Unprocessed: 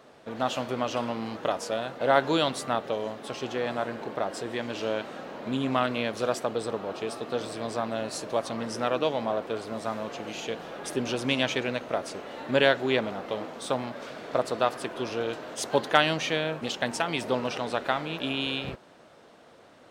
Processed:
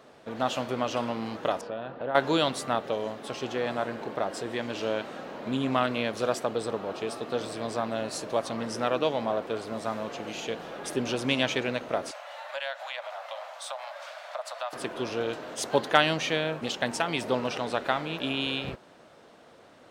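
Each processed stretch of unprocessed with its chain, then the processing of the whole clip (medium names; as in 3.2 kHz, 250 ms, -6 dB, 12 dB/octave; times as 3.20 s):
1.61–2.15 s: distance through air 380 m + band-stop 2.1 kHz, Q 9.6 + compression 2.5:1, threshold -31 dBFS
12.11–14.73 s: steep high-pass 560 Hz 96 dB/octave + compression 2.5:1, threshold -34 dBFS
whole clip: none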